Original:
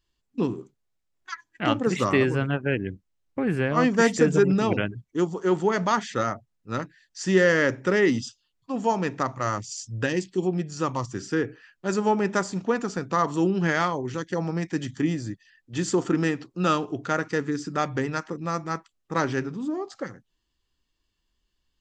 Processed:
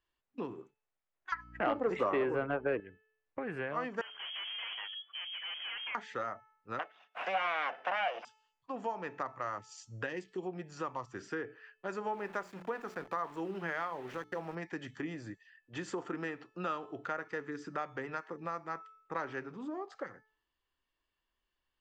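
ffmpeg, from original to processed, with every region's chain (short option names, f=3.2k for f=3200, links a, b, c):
-filter_complex "[0:a]asettb=1/sr,asplit=3[a][b][c];[a]atrim=end=1.324[d];[b]atrim=start=1.32:end=2.8,asetpts=PTS-STARTPTS,afade=t=in:d=0.004:c=qsin,afade=t=out:st=1.476:d=0.004:c=qsin,equalizer=f=480:w=0.35:g=13.5,acontrast=22,aeval=exprs='val(0)+0.02*(sin(2*PI*60*n/s)+sin(2*PI*2*60*n/s)/2+sin(2*PI*3*60*n/s)/3+sin(2*PI*4*60*n/s)/4+sin(2*PI*5*60*n/s)/5)':c=same[e];[c]atrim=start=2.796[f];[d][e]acrossfade=d=0.004:c1=hsin:c2=qsin[g];[g][f]acrossfade=d=0.004:c1=qsin:c2=hsin,asettb=1/sr,asplit=3[h][i][j];[h]atrim=end=4.014[k];[i]atrim=start=4.01:end=5.95,asetpts=PTS-STARTPTS,afade=t=in:d=0.004:c=qsin,afade=t=out:st=1.936:d=0.004:c=qsin,acompressor=mode=upward:threshold=-21dB:ratio=2.5:attack=3.2:release=140:knee=2.83:detection=peak,aeval=exprs='(tanh(39.8*val(0)+0.15)-tanh(0.15))/39.8':c=same,lowpass=f=2.9k:t=q:w=0.5098,lowpass=f=2.9k:t=q:w=0.6013,lowpass=f=2.9k:t=q:w=0.9,lowpass=f=2.9k:t=q:w=2.563,afreqshift=-3400[l];[j]atrim=start=5.946[m];[k][l]acrossfade=d=0.004:c1=hsin:c2=qsin[n];[n][m]acrossfade=d=0.004:c1=qsin:c2=hsin,asettb=1/sr,asplit=3[o][p][q];[o]atrim=end=6.794[r];[p]atrim=start=6.79:end=8.25,asetpts=PTS-STARTPTS,afade=t=in:d=0.004:c=qsin,afade=t=out:st=1.456:d=0.004:c=qsin,acontrast=87,aeval=exprs='abs(val(0))':c=same,highpass=f=240:w=0.5412,highpass=f=240:w=1.3066,equalizer=f=260:t=q:w=4:g=-6,equalizer=f=380:t=q:w=4:g=-10,equalizer=f=710:t=q:w=4:g=9,equalizer=f=1.4k:t=q:w=4:g=3,equalizer=f=2.8k:t=q:w=4:g=9,equalizer=f=4.3k:t=q:w=4:g=-6,lowpass=f=5.3k:w=0.5412,lowpass=f=5.3k:w=1.3066[s];[q]atrim=start=8.246[t];[r][s]acrossfade=d=0.004:c1=hsin:c2=qsin[u];[u][t]acrossfade=d=0.004:c1=qsin:c2=hsin,asettb=1/sr,asplit=3[v][w][x];[v]atrim=end=12.134[y];[w]atrim=start=12.13:end=14.55,asetpts=PTS-STARTPTS,afade=t=in:d=0.004:c=qsin,afade=t=out:st=2.416:d=0.004:c=qsin,aeval=exprs='val(0)*gte(abs(val(0)),0.0141)':c=same,bandreject=f=60:t=h:w=6,bandreject=f=120:t=h:w=6,bandreject=f=180:t=h:w=6,bandreject=f=240:t=h:w=6,bandreject=f=300:t=h:w=6,bandreject=f=360:t=h:w=6[z];[x]atrim=start=14.546[aa];[y][z]acrossfade=d=0.004:c1=hsin:c2=qsin[ab];[ab][aa]acrossfade=d=0.004:c1=qsin:c2=hsin,acrossover=split=440 2800:gain=0.224 1 0.158[ac][ad][ae];[ac][ad][ae]amix=inputs=3:normalize=0,bandreject=f=435.1:t=h:w=4,bandreject=f=870.2:t=h:w=4,bandreject=f=1.3053k:t=h:w=4,bandreject=f=1.7404k:t=h:w=4,bandreject=f=2.1755k:t=h:w=4,bandreject=f=2.6106k:t=h:w=4,bandreject=f=3.0457k:t=h:w=4,bandreject=f=3.4808k:t=h:w=4,bandreject=f=3.9159k:t=h:w=4,bandreject=f=4.351k:t=h:w=4,bandreject=f=4.7861k:t=h:w=4,bandreject=f=5.2212k:t=h:w=4,bandreject=f=5.6563k:t=h:w=4,bandreject=f=6.0914k:t=h:w=4,bandreject=f=6.5265k:t=h:w=4,bandreject=f=6.9616k:t=h:w=4,bandreject=f=7.3967k:t=h:w=4,bandreject=f=7.8318k:t=h:w=4,bandreject=f=8.2669k:t=h:w=4,bandreject=f=8.702k:t=h:w=4,bandreject=f=9.1371k:t=h:w=4,bandreject=f=9.5722k:t=h:w=4,bandreject=f=10.0073k:t=h:w=4,bandreject=f=10.4424k:t=h:w=4,bandreject=f=10.8775k:t=h:w=4,bandreject=f=11.3126k:t=h:w=4,bandreject=f=11.7477k:t=h:w=4,bandreject=f=12.1828k:t=h:w=4,bandreject=f=12.6179k:t=h:w=4,bandreject=f=13.053k:t=h:w=4,bandreject=f=13.4881k:t=h:w=4,bandreject=f=13.9232k:t=h:w=4,acompressor=threshold=-37dB:ratio=2.5,volume=-1dB"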